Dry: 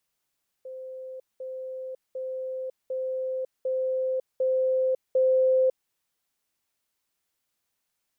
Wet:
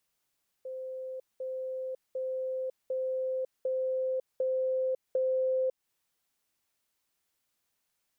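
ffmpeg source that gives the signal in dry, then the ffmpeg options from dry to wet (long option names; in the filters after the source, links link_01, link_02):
-f lavfi -i "aevalsrc='pow(10,(-36+3*floor(t/0.75))/20)*sin(2*PI*519*t)*clip(min(mod(t,0.75),0.55-mod(t,0.75))/0.005,0,1)':duration=5.25:sample_rate=44100"
-af "acompressor=threshold=-31dB:ratio=2.5"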